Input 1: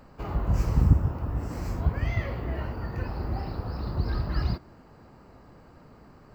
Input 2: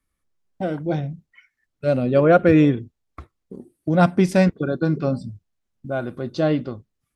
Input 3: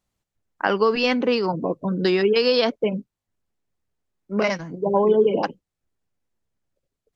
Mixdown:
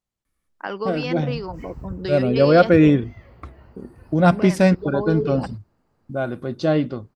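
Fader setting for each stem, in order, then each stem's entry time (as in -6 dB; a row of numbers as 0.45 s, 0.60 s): -16.0 dB, +1.0 dB, -8.5 dB; 1.00 s, 0.25 s, 0.00 s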